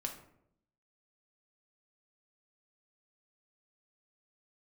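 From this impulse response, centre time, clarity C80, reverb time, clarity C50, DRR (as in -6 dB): 18 ms, 12.0 dB, 0.75 s, 8.5 dB, 2.0 dB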